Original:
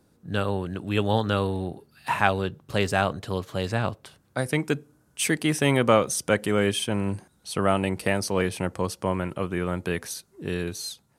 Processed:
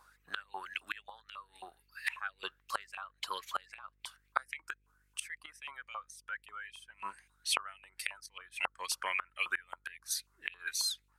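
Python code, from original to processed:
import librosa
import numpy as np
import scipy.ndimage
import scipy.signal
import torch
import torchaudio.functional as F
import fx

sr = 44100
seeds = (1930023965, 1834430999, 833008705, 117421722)

y = fx.dereverb_blind(x, sr, rt60_s=1.5)
y = fx.filter_lfo_highpass(y, sr, shape='saw_up', hz=3.7, low_hz=990.0, high_hz=2700.0, q=6.6)
y = fx.gate_flip(y, sr, shuts_db=-20.0, range_db=-27)
y = fx.dmg_buzz(y, sr, base_hz=50.0, harmonics=10, level_db=-75.0, tilt_db=-9, odd_only=False)
y = F.gain(torch.from_numpy(y), 1.0).numpy()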